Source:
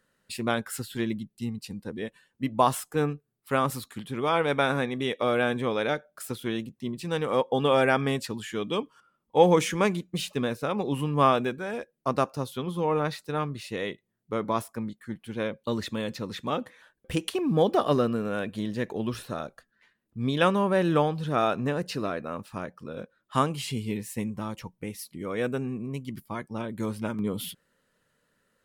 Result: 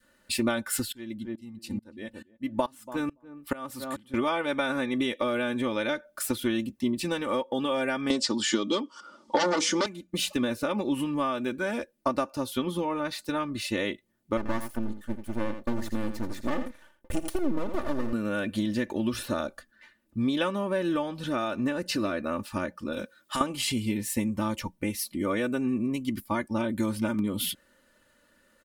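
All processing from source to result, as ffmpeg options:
-filter_complex "[0:a]asettb=1/sr,asplit=3[a][b][c];[a]atrim=end=0.924[d];[b]atrim=start=0.92:end=4.14,asetpts=PTS-STARTPTS,afade=t=in:d=0.004:c=qsin,afade=t=out:st=3.216:d=0.004:c=qsin,asplit=2[e][f];[f]adelay=284,lowpass=f=810:p=1,volume=-11.5dB,asplit=2[g][h];[h]adelay=284,lowpass=f=810:p=1,volume=0.19[i];[e][g][i]amix=inputs=3:normalize=0,atrim=end_sample=142002,aeval=exprs='val(0)*pow(10,-27*if(lt(mod(-2.3*n/s,1),2*abs(-2.3)/1000),1-mod(-2.3*n/s,1)/(2*abs(-2.3)/1000),(mod(-2.3*n/s,1)-2*abs(-2.3)/1000)/(1-2*abs(-2.3)/1000))/20)':c=same[j];[c]atrim=start=4.136[k];[d][j]acrossfade=d=0.004:c1=hsin:c2=qsin[l];[l][k]acrossfade=d=0.004:c1=qsin:c2=hsin,asettb=1/sr,asplit=3[m][n][o];[m]atrim=end=8.104[p];[n]atrim=start=8.1:end=9.86,asetpts=PTS-STARTPTS,afade=t=in:d=0.004:c=qsin,afade=t=out:st=1.756:d=0.004:c=qsin,aeval=exprs='0.562*sin(PI/2*5.01*val(0)/0.562)':c=same,highpass=250,equalizer=f=1.7k:t=q:w=4:g=-8,equalizer=f=2.5k:t=q:w=4:g=-9,equalizer=f=5.1k:t=q:w=4:g=6,lowpass=f=7.6k:w=0.5412,lowpass=f=7.6k:w=1.3066[q];[o]atrim=start=9.856[r];[p][q]acrossfade=d=0.004:c1=hsin:c2=qsin[s];[s][r]acrossfade=d=0.004:c1=qsin:c2=hsin,asettb=1/sr,asplit=3[t][u][v];[t]atrim=end=14.374[w];[u]atrim=start=14.37:end=18.13,asetpts=PTS-STARTPTS,afade=t=in:d=0.004:c=qsin,afade=t=out:st=3.756:d=0.004:c=qsin,equalizer=f=3.2k:w=0.87:g=-14.5,aeval=exprs='max(val(0),0)':c=same,aecho=1:1:84:0.299,atrim=end_sample=165816[x];[v]atrim=start=18.126[y];[w][x]acrossfade=d=0.004:c1=hsin:c2=qsin[z];[z][y]acrossfade=d=0.004:c1=qsin:c2=hsin,asettb=1/sr,asplit=3[aa][ab][ac];[aa]atrim=end=22.924[ad];[ab]atrim=start=22.92:end=23.41,asetpts=PTS-STARTPTS,afade=t=in:d=0.004:c=qsin,afade=t=out:st=0.486:d=0.004:c=qsin,highpass=70,highshelf=f=2.6k:g=11,acompressor=threshold=-34dB:ratio=6:attack=3.2:release=140:knee=1:detection=peak[ae];[ac]atrim=start=23.406[af];[ad][ae]acrossfade=d=0.004:c1=hsin:c2=qsin[ag];[ag][af]acrossfade=d=0.004:c1=qsin:c2=hsin,acompressor=threshold=-30dB:ratio=12,adynamicequalizer=threshold=0.00316:dfrequency=740:dqfactor=0.88:tfrequency=740:tqfactor=0.88:attack=5:release=100:ratio=0.375:range=2:mode=cutabove:tftype=bell,aecho=1:1:3.4:0.73,volume=6dB"

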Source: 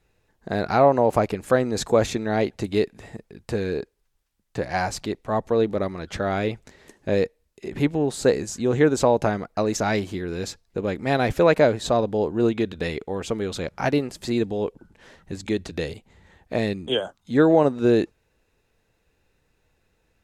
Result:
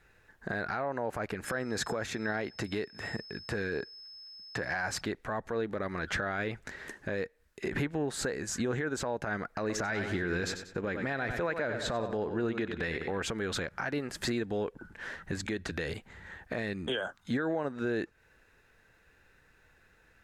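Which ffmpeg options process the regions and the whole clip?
-filter_complex "[0:a]asettb=1/sr,asplit=3[a][b][c];[a]atrim=end=1.454[d];[b]atrim=start=1.45:end=5.01,asetpts=PTS-STARTPTS,afade=t=in:d=0.004:c=qsin,afade=t=out:st=3.556:d=0.004:c=qsin,highpass=63,aeval=exprs='val(0)+0.00398*sin(2*PI*5200*n/s)':c=same[e];[c]atrim=start=5.006[f];[d][e]acrossfade=d=0.004:c1=hsin:c2=qsin[g];[g][f]acrossfade=d=0.004:c1=qsin:c2=hsin,asettb=1/sr,asplit=3[h][i][j];[h]atrim=end=9.604[k];[i]atrim=start=9.6:end=13.2,asetpts=PTS-STARTPTS,afade=t=in:d=0.004:c=qsin,afade=t=out:st=3.596:d=0.004:c=qsin,highshelf=f=8.9k:g=-9,aecho=1:1:95|190|285|380:0.266|0.0958|0.0345|0.0124,atrim=end_sample=158760[l];[j]atrim=start=13.196[m];[k][l]acrossfade=d=0.004:c1=hsin:c2=qsin[n];[n][m]acrossfade=d=0.004:c1=qsin:c2=hsin,acompressor=threshold=-29dB:ratio=10,equalizer=f=1.6k:t=o:w=0.82:g=13,alimiter=limit=-23.5dB:level=0:latency=1:release=47,volume=1dB"

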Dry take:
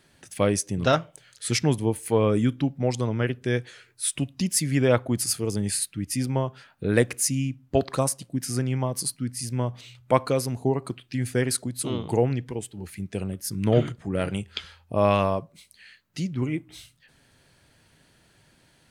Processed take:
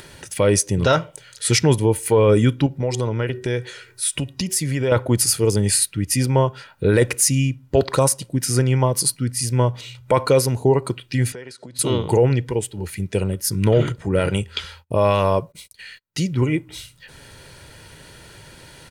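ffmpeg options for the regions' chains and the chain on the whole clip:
-filter_complex "[0:a]asettb=1/sr,asplit=3[a][b][c];[a]atrim=end=2.664[d];[b]atrim=start=2.66:end=4.92,asetpts=PTS-STARTPTS,afade=t=in:d=0.004:c=qsin,afade=t=out:st=2.256:d=0.004:c=qsin,bandreject=f=375.5:t=h:w=4,bandreject=f=751:t=h:w=4,bandreject=f=1.1265k:t=h:w=4,bandreject=f=1.502k:t=h:w=4,bandreject=f=1.8775k:t=h:w=4,acompressor=threshold=-27dB:ratio=4:attack=3.2:release=140:knee=1:detection=peak[e];[c]atrim=start=4.916[f];[d][e]acrossfade=d=0.004:c1=hsin:c2=qsin[g];[g][f]acrossfade=d=0.004:c1=qsin:c2=hsin,asettb=1/sr,asplit=3[h][i][j];[h]atrim=end=11.324[k];[i]atrim=start=11.32:end=11.79,asetpts=PTS-STARTPTS,afade=t=in:d=0.004:c=qsin,afade=t=out:st=0.466:d=0.004:c=qsin,lowshelf=f=450:g=-5.5,acompressor=threshold=-39dB:ratio=16:attack=3.2:release=140:knee=1:detection=peak,highpass=150,lowpass=5.2k[l];[j]atrim=start=11.786[m];[k][l]acrossfade=d=0.004:c1=hsin:c2=qsin[n];[n][m]acrossfade=d=0.004:c1=qsin:c2=hsin,asettb=1/sr,asplit=3[o][p][q];[o]atrim=end=14.564[r];[p]atrim=start=14.56:end=16.41,asetpts=PTS-STARTPTS,afade=t=in:d=0.004:c=qsin,afade=t=out:st=1.846:d=0.004:c=qsin,highshelf=f=10k:g=6,agate=range=-32dB:threshold=-57dB:ratio=16:release=100:detection=peak[s];[q]atrim=start=16.406[t];[r][s]acrossfade=d=0.004:c1=hsin:c2=qsin[u];[u][t]acrossfade=d=0.004:c1=qsin:c2=hsin,aecho=1:1:2.1:0.41,alimiter=limit=-15dB:level=0:latency=1:release=17,acompressor=mode=upward:threshold=-43dB:ratio=2.5,volume=8.5dB"

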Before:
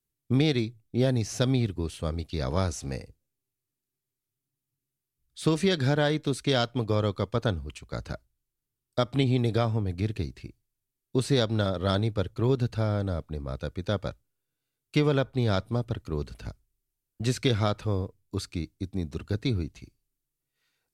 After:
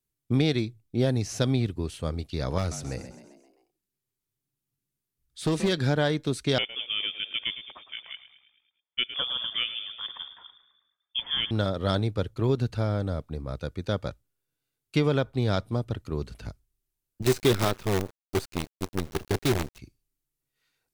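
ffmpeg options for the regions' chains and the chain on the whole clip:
-filter_complex "[0:a]asettb=1/sr,asplit=3[a][b][c];[a]atrim=end=2.584[d];[b]atrim=start=2.58:end=5.73,asetpts=PTS-STARTPTS,afade=t=in:d=0.004:c=qsin,afade=t=out:st=3.146:d=0.004:c=qsin,volume=19.5dB,asoftclip=hard,volume=-19.5dB,asplit=6[e][f][g][h][i][j];[f]adelay=131,afreqshift=52,volume=-12dB[k];[g]adelay=262,afreqshift=104,volume=-17.7dB[l];[h]adelay=393,afreqshift=156,volume=-23.4dB[m];[i]adelay=524,afreqshift=208,volume=-29dB[n];[j]adelay=655,afreqshift=260,volume=-34.7dB[o];[e][k][l][m][n][o]amix=inputs=6:normalize=0,atrim=end_sample=138915[p];[c]atrim=start=5.726[q];[d][p]acrossfade=d=0.004:c1=hsin:c2=qsin[r];[r][q]acrossfade=d=0.004:c1=qsin:c2=hsin,asettb=1/sr,asplit=3[s][t][u];[s]atrim=end=6.584[v];[t]atrim=start=6.58:end=11.51,asetpts=PTS-STARTPTS,afade=t=in:d=0.004:c=qsin,afade=t=out:st=4.926:d=0.004:c=qsin,highpass=f=470:p=1,asplit=7[w][x][y][z][aa][ab][ac];[x]adelay=108,afreqshift=-43,volume=-13dB[ad];[y]adelay=216,afreqshift=-86,volume=-18dB[ae];[z]adelay=324,afreqshift=-129,volume=-23.1dB[af];[aa]adelay=432,afreqshift=-172,volume=-28.1dB[ag];[ab]adelay=540,afreqshift=-215,volume=-33.1dB[ah];[ac]adelay=648,afreqshift=-258,volume=-38.2dB[ai];[w][ad][ae][af][ag][ah][ai]amix=inputs=7:normalize=0,atrim=end_sample=217413,lowpass=f=3.1k:t=q:w=0.5098,lowpass=f=3.1k:t=q:w=0.6013,lowpass=f=3.1k:t=q:w=0.9,lowpass=f=3.1k:t=q:w=2.563,afreqshift=-3600[aj];[u]atrim=start=11.506[ak];[v][aj]acrossfade=d=0.004:c1=hsin:c2=qsin[al];[al][ak]acrossfade=d=0.004:c1=qsin:c2=hsin,asettb=1/sr,asplit=3[am][an][ao];[am]atrim=end=17.224[ap];[an]atrim=start=17.22:end=19.79,asetpts=PTS-STARTPTS,afade=t=in:d=0.004:c=qsin,afade=t=out:st=2.566:d=0.004:c=qsin,equalizer=f=380:t=o:w=0.21:g=11,acrusher=bits=5:dc=4:mix=0:aa=0.000001[aq];[ao]atrim=start=19.786[ar];[ap][aq]acrossfade=d=0.004:c1=hsin:c2=qsin[as];[as][ar]acrossfade=d=0.004:c1=qsin:c2=hsin"

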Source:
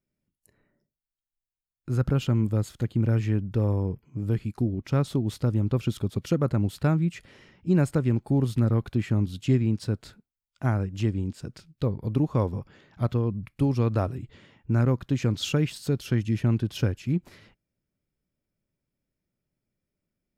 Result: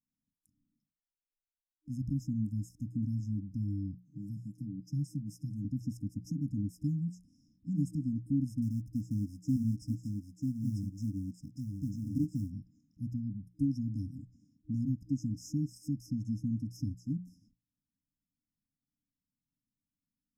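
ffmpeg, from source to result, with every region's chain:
-filter_complex "[0:a]asettb=1/sr,asplit=3[a][b][c];[a]atrim=end=4.034[d];[b]atrim=start=4.03:end=5.65,asetpts=PTS-STARTPTS,afade=t=in:d=0.004:c=qsin,afade=t=out:st=1.616:d=0.004:c=qsin,highpass=93,acrossover=split=180|3000[e][f][g];[f]acompressor=threshold=-46dB:ratio=1.5:attack=3.2:release=140:knee=2.83:detection=peak[h];[e][h][g]amix=inputs=3:normalize=0,aecho=1:1:6:0.66,atrim=end_sample=71442[i];[c]atrim=start=5.646[j];[d][i]acrossfade=d=0.004:c1=hsin:c2=qsin[k];[k][j]acrossfade=d=0.004:c1=qsin:c2=hsin,asettb=1/sr,asplit=3[l][m][n];[l]atrim=end=8.624[o];[m]atrim=start=8.62:end=12.5,asetpts=PTS-STARTPTS,afade=t=in:d=0.004:c=qsin,afade=t=out:st=3.876:d=0.004:c=qsin,acrusher=bits=7:mode=log:mix=0:aa=0.000001,aecho=1:1:943:0.631,atrim=end_sample=171108[p];[n]atrim=start=12.496[q];[o][p]acrossfade=d=0.004:c1=hsin:c2=qsin[r];[r][q]acrossfade=d=0.004:c1=qsin:c2=hsin,bass=f=250:g=-11,treble=f=4k:g=-12,bandreject=f=60:t=h:w=6,bandreject=f=120:t=h:w=6,bandreject=f=180:t=h:w=6,afftfilt=real='re*(1-between(b*sr/4096,310,5000))':imag='im*(1-between(b*sr/4096,310,5000))':win_size=4096:overlap=0.75"

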